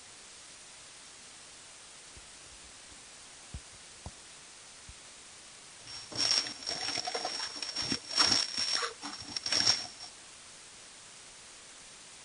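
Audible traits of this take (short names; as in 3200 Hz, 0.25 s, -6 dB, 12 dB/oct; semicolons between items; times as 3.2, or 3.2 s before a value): a buzz of ramps at a fixed pitch in blocks of 8 samples; chopped level 2.1 Hz, depth 65%, duty 70%; a quantiser's noise floor 8-bit, dither triangular; MP3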